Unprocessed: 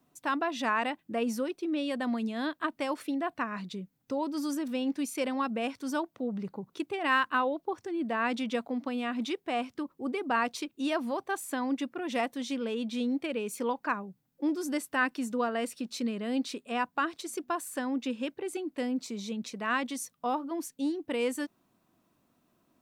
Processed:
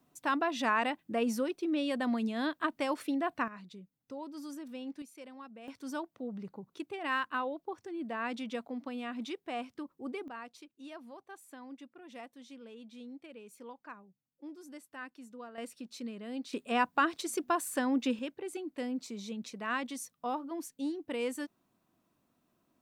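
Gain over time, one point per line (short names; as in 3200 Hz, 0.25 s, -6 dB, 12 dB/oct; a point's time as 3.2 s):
-0.5 dB
from 3.48 s -11 dB
from 5.02 s -18 dB
from 5.68 s -6.5 dB
from 10.28 s -17 dB
from 15.58 s -9 dB
from 16.53 s +2 dB
from 18.19 s -4.5 dB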